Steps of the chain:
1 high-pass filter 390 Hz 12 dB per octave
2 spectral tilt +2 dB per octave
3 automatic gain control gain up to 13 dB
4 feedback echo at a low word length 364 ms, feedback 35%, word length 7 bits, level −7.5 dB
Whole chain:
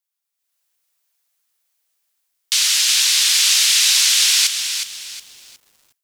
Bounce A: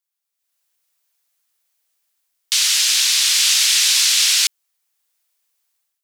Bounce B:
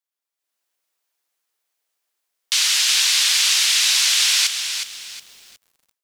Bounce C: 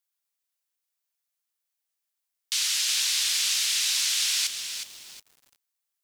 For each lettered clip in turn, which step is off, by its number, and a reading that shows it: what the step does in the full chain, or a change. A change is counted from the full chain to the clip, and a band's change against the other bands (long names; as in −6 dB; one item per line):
4, change in momentary loudness spread −8 LU
2, 1 kHz band +3.5 dB
3, change in integrated loudness −10.5 LU